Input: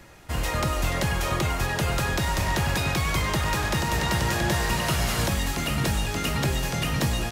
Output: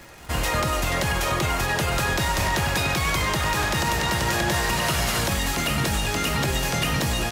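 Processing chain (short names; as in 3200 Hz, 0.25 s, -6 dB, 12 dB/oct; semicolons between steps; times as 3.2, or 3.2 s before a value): low shelf 280 Hz -5 dB; limiter -19.5 dBFS, peak gain reduction 5.5 dB; crackle 130/s -39 dBFS; on a send: reverse echo 0.106 s -22.5 dB; on the sum: gain +5.5 dB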